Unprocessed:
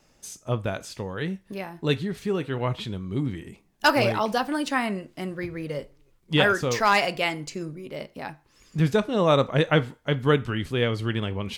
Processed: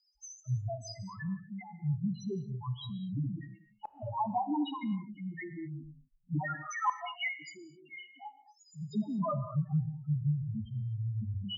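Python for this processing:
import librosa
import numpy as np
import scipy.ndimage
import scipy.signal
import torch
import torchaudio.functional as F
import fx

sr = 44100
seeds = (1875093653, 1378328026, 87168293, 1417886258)

y = fx.highpass(x, sr, hz=910.0, slope=6, at=(6.47, 8.96))
y = fx.env_lowpass_down(y, sr, base_hz=1200.0, full_db=-18.0)
y = fx.tilt_eq(y, sr, slope=2.5)
y = y + 0.98 * np.pad(y, (int(1.0 * sr / 1000.0), 0))[:len(y)]
y = fx.spec_topn(y, sr, count=1)
y = 10.0 ** (-12.0 / 20.0) * np.tanh(y / 10.0 ** (-12.0 / 20.0))
y = fx.gate_flip(y, sr, shuts_db=-22.0, range_db=-39)
y = fx.rotary(y, sr, hz=0.85)
y = fx.rev_gated(y, sr, seeds[0], gate_ms=270, shape='flat', drr_db=11.0)
y = y * 10.0 ** (4.0 / 20.0)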